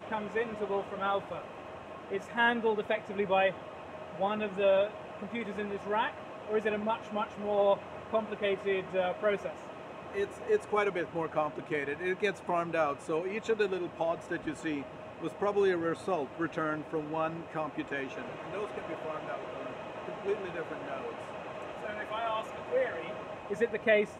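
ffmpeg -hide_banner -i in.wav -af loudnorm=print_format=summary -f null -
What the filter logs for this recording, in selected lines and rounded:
Input Integrated:    -33.2 LUFS
Input True Peak:     -13.2 dBTP
Input LRA:             5.6 LU
Input Threshold:     -43.4 LUFS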